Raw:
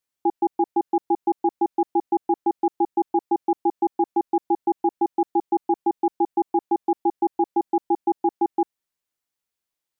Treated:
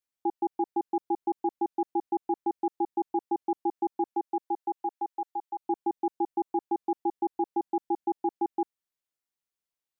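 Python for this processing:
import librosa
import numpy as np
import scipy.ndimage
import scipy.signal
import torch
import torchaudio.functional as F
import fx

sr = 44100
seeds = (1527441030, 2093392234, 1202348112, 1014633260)

y = fx.highpass(x, sr, hz=fx.line((4.13, 280.0), (5.59, 920.0)), slope=12, at=(4.13, 5.59), fade=0.02)
y = y * 10.0 ** (-7.0 / 20.0)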